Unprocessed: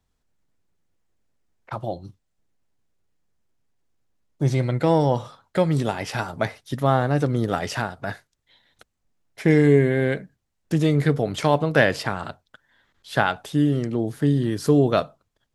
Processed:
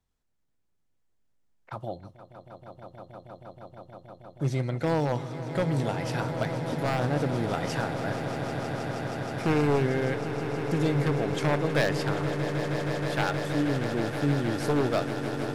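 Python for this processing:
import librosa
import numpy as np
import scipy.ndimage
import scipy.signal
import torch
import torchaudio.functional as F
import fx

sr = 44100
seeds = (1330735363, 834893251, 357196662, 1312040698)

y = 10.0 ** (-11.0 / 20.0) * (np.abs((x / 10.0 ** (-11.0 / 20.0) + 3.0) % 4.0 - 2.0) - 1.0)
y = fx.echo_swell(y, sr, ms=158, loudest=8, wet_db=-12)
y = F.gain(torch.from_numpy(y), -6.5).numpy()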